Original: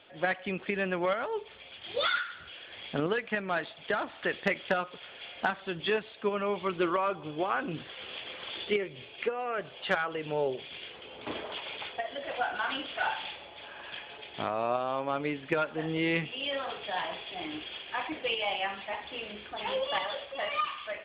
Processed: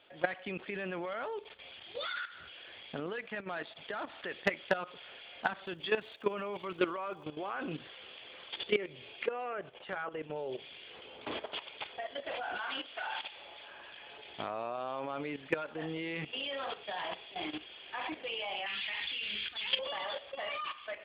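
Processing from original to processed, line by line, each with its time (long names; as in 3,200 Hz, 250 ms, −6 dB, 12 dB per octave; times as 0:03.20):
0:05.64–0:07.23: surface crackle 290 per second −58 dBFS
0:09.53–0:10.36: high-frequency loss of the air 370 metres
0:12.57–0:13.71: low-shelf EQ 380 Hz −7 dB
0:18.66–0:19.79: drawn EQ curve 120 Hz 0 dB, 700 Hz −12 dB, 2,100 Hz +9 dB, 3,600 Hz +13 dB
whole clip: bass and treble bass −3 dB, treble +2 dB; output level in coarse steps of 13 dB; level +1 dB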